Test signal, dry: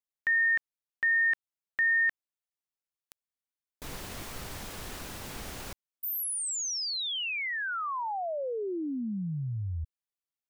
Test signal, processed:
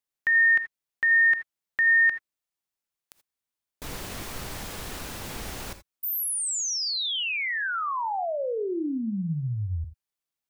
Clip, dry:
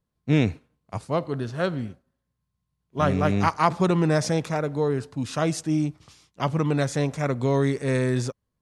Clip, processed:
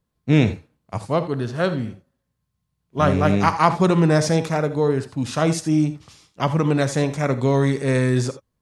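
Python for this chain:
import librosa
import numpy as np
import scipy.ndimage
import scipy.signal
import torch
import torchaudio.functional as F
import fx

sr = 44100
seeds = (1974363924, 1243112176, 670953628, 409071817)

y = fx.rev_gated(x, sr, seeds[0], gate_ms=100, shape='rising', drr_db=11.5)
y = y * librosa.db_to_amplitude(4.0)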